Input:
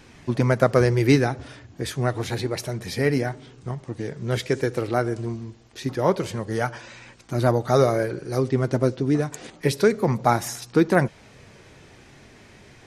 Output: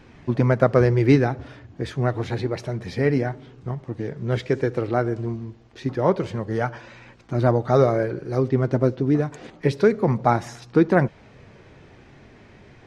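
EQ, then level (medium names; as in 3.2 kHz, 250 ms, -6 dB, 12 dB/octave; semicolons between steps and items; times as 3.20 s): tape spacing loss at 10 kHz 20 dB; +2.0 dB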